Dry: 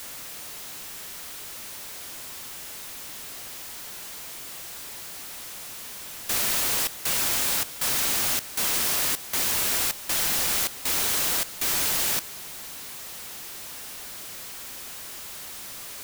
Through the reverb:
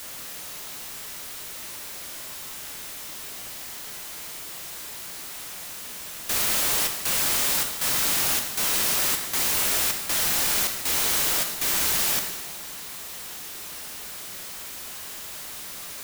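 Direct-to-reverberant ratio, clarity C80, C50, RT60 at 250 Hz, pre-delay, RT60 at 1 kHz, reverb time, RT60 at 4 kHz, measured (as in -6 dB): 3.5 dB, 8.0 dB, 6.0 dB, 1.4 s, 5 ms, 1.4 s, 1.4 s, 1.3 s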